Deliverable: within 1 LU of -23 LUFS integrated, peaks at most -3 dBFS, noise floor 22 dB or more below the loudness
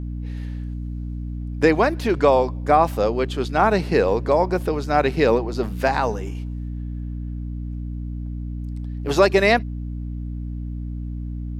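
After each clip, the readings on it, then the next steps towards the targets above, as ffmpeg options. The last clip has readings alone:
hum 60 Hz; harmonics up to 300 Hz; hum level -26 dBFS; loudness -22.5 LUFS; peak -2.5 dBFS; loudness target -23.0 LUFS
-> -af "bandreject=f=60:t=h:w=6,bandreject=f=120:t=h:w=6,bandreject=f=180:t=h:w=6,bandreject=f=240:t=h:w=6,bandreject=f=300:t=h:w=6"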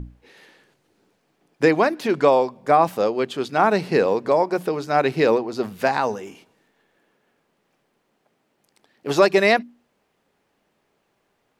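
hum none; loudness -20.0 LUFS; peak -3.0 dBFS; loudness target -23.0 LUFS
-> -af "volume=-3dB"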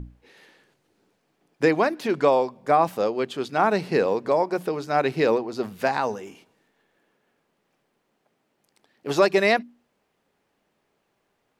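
loudness -23.0 LUFS; peak -6.0 dBFS; noise floor -73 dBFS

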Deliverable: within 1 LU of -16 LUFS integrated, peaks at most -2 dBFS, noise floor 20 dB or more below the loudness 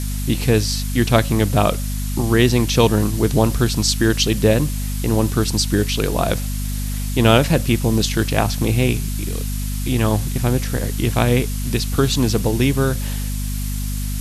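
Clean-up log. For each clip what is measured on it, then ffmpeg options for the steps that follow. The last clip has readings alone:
hum 50 Hz; harmonics up to 250 Hz; hum level -21 dBFS; noise floor -23 dBFS; noise floor target -39 dBFS; loudness -19.0 LUFS; peak -1.0 dBFS; loudness target -16.0 LUFS
-> -af "bandreject=f=50:t=h:w=4,bandreject=f=100:t=h:w=4,bandreject=f=150:t=h:w=4,bandreject=f=200:t=h:w=4,bandreject=f=250:t=h:w=4"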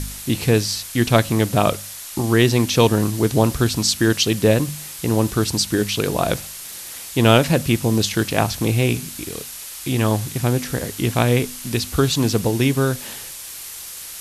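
hum none; noise floor -35 dBFS; noise floor target -40 dBFS
-> -af "afftdn=nr=6:nf=-35"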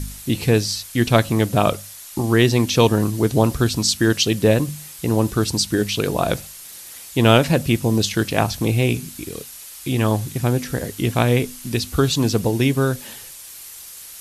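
noise floor -39 dBFS; noise floor target -40 dBFS
-> -af "afftdn=nr=6:nf=-39"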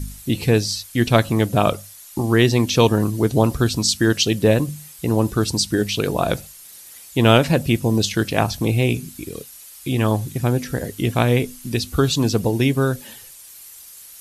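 noise floor -42 dBFS; loudness -19.5 LUFS; peak -1.5 dBFS; loudness target -16.0 LUFS
-> -af "volume=3.5dB,alimiter=limit=-2dB:level=0:latency=1"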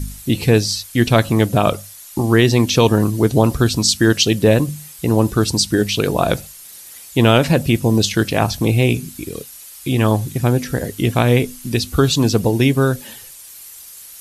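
loudness -16.5 LUFS; peak -2.0 dBFS; noise floor -39 dBFS

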